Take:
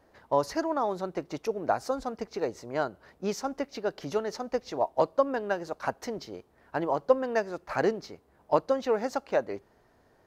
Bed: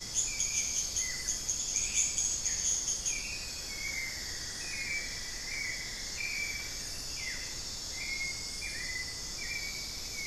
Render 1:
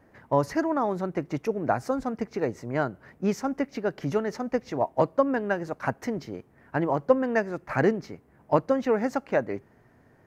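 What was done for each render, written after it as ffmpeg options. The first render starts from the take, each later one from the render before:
-af "equalizer=f=125:t=o:w=1:g=11,equalizer=f=250:t=o:w=1:g=6,equalizer=f=2000:t=o:w=1:g=7,equalizer=f=4000:t=o:w=1:g=-7"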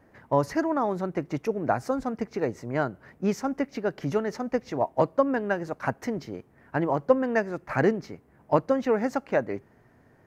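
-af anull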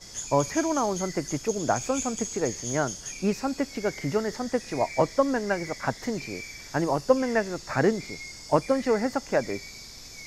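-filter_complex "[1:a]volume=0.596[s0];[0:a][s0]amix=inputs=2:normalize=0"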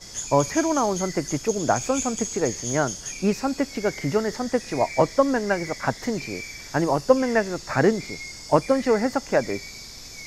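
-af "volume=1.5"

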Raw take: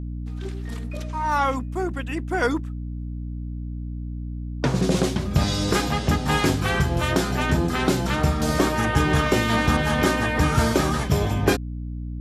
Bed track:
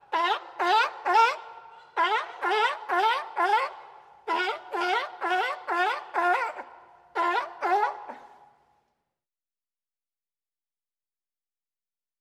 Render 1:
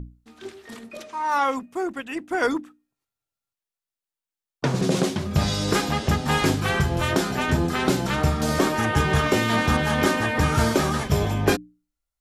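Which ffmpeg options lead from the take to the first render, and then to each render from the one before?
-af "bandreject=f=60:t=h:w=6,bandreject=f=120:t=h:w=6,bandreject=f=180:t=h:w=6,bandreject=f=240:t=h:w=6,bandreject=f=300:t=h:w=6"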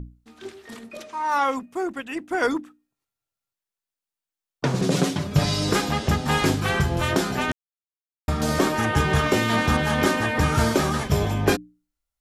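-filter_complex "[0:a]asettb=1/sr,asplit=3[s0][s1][s2];[s0]atrim=end=4.914[s3];[s1]atrim=start=4.91:end=5.69,asetpts=PTS-STARTPTS,afade=t=in:d=0.004:c=qsin,afade=t=out:st=0.776:d=0.004:c=qsin,aecho=1:1:6.9:0.65,atrim=end_sample=34398[s4];[s2]atrim=start=5.686[s5];[s3][s4]acrossfade=d=0.004:c1=hsin:c2=qsin[s6];[s6][s5]acrossfade=d=0.004:c1=qsin:c2=hsin,asplit=3[s7][s8][s9];[s7]atrim=end=7.52,asetpts=PTS-STARTPTS,afade=t=out:st=7.516:d=0.004:c=hsin[s10];[s8]atrim=start=7.52:end=8.28,asetpts=PTS-STARTPTS,volume=0[s11];[s9]atrim=start=8.28,asetpts=PTS-STARTPTS,afade=t=in:d=0.004:c=hsin[s12];[s10][s11][s12]concat=n=3:v=0:a=1"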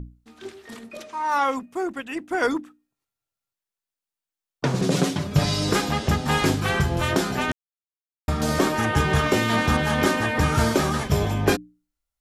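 -af anull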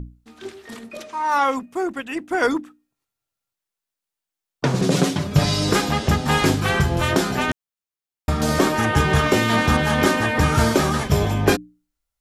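-af "volume=1.41"

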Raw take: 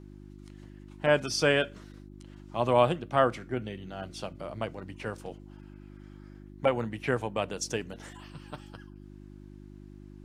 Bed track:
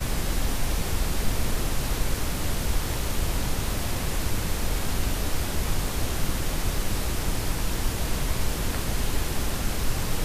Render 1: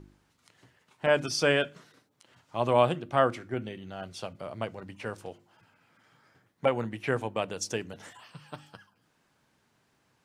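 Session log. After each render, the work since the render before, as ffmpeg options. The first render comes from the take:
-af "bandreject=f=50:t=h:w=4,bandreject=f=100:t=h:w=4,bandreject=f=150:t=h:w=4,bandreject=f=200:t=h:w=4,bandreject=f=250:t=h:w=4,bandreject=f=300:t=h:w=4,bandreject=f=350:t=h:w=4"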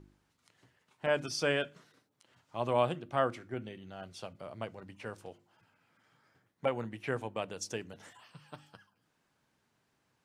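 -af "volume=0.501"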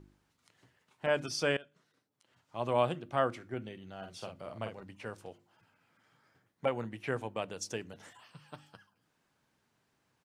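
-filter_complex "[0:a]asplit=3[s0][s1][s2];[s0]afade=t=out:st=4.01:d=0.02[s3];[s1]asplit=2[s4][s5];[s5]adelay=46,volume=0.501[s6];[s4][s6]amix=inputs=2:normalize=0,afade=t=in:st=4.01:d=0.02,afade=t=out:st=4.81:d=0.02[s7];[s2]afade=t=in:st=4.81:d=0.02[s8];[s3][s7][s8]amix=inputs=3:normalize=0,asplit=2[s9][s10];[s9]atrim=end=1.57,asetpts=PTS-STARTPTS,afade=t=out:st=1.566:d=0.004:c=hsin:silence=0.0891251[s11];[s10]atrim=start=1.57,asetpts=PTS-STARTPTS,afade=t=in:d=1.23:silence=0.0891251[s12];[s11][s12]concat=n=2:v=0:a=1"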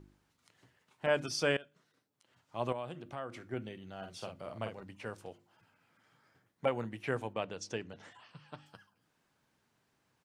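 -filter_complex "[0:a]asettb=1/sr,asplit=3[s0][s1][s2];[s0]atrim=end=2.724[s3];[s1]atrim=start=2.72:end=3.43,asetpts=PTS-STARTPTS,afade=t=in:d=0.004:c=qsin,afade=t=out:st=0.706:d=0.004:c=qsin,acompressor=threshold=0.00794:ratio=2.5:attack=3.2:release=140:knee=1:detection=peak[s4];[s2]atrim=start=3.426[s5];[s3][s4]acrossfade=d=0.004:c1=hsin:c2=qsin[s6];[s6][s5]acrossfade=d=0.004:c1=qsin:c2=hsin,asettb=1/sr,asplit=3[s7][s8][s9];[s7]atrim=end=7.334[s10];[s8]atrim=start=7.33:end=8.66,asetpts=PTS-STARTPTS,afade=t=in:d=0.004:c=qsin,afade=t=out:st=1.326:d=0.004:c=qsin,lowpass=5200[s11];[s9]atrim=start=8.656[s12];[s10][s11]acrossfade=d=0.004:c1=hsin:c2=qsin[s13];[s13][s12]acrossfade=d=0.004:c1=qsin:c2=hsin"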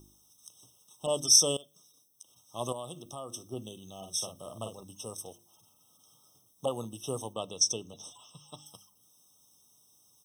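-af "aexciter=amount=15.5:drive=3.7:freq=4000,afftfilt=real='re*eq(mod(floor(b*sr/1024/1300),2),0)':imag='im*eq(mod(floor(b*sr/1024/1300),2),0)':win_size=1024:overlap=0.75"

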